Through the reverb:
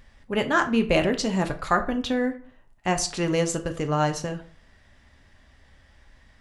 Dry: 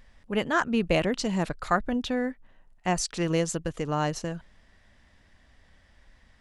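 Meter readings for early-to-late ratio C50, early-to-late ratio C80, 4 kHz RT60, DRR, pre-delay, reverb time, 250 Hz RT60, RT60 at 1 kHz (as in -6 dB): 14.0 dB, 18.0 dB, 0.35 s, 6.0 dB, 3 ms, 0.45 s, 0.45 s, 0.45 s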